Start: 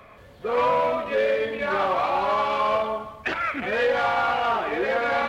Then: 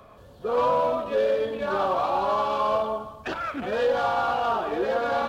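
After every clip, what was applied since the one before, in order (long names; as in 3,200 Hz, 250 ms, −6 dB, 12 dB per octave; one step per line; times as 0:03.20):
parametric band 2,100 Hz −14.5 dB 0.65 octaves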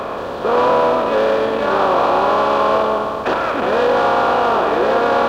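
compressor on every frequency bin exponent 0.4
level +4 dB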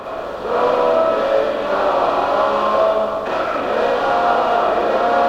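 convolution reverb RT60 0.35 s, pre-delay 20 ms, DRR −3 dB
level −6.5 dB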